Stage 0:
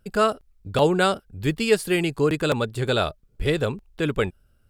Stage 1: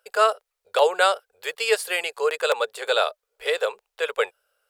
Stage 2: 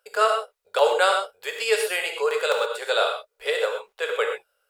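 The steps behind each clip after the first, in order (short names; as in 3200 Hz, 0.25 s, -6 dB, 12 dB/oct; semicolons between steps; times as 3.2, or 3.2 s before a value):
elliptic high-pass 470 Hz, stop band 40 dB; gain +3 dB
non-linear reverb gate 0.15 s flat, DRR 2.5 dB; gain -2 dB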